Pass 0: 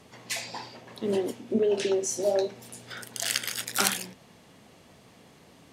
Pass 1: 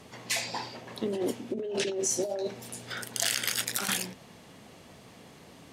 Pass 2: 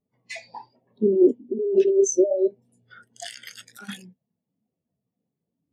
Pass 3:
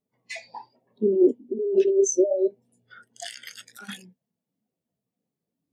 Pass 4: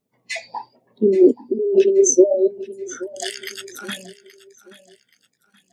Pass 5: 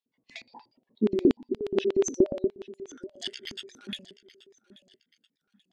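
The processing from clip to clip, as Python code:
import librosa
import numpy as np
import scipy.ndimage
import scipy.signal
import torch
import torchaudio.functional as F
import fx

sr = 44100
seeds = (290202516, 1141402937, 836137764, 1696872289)

y1 = fx.over_compress(x, sr, threshold_db=-30.0, ratio=-1.0)
y2 = fx.vibrato(y1, sr, rate_hz=1.6, depth_cents=45.0)
y2 = fx.spectral_expand(y2, sr, expansion=2.5)
y3 = fx.low_shelf(y2, sr, hz=180.0, db=-8.0)
y4 = fx.hpss(y3, sr, part='percussive', gain_db=4)
y4 = fx.echo_feedback(y4, sr, ms=827, feedback_pct=36, wet_db=-18)
y4 = F.gain(torch.from_numpy(y4), 5.5).numpy()
y5 = fx.filter_lfo_bandpass(y4, sr, shape='square', hz=8.4, low_hz=250.0, high_hz=3400.0, q=2.2)
y5 = F.gain(torch.from_numpy(y5), -2.0).numpy()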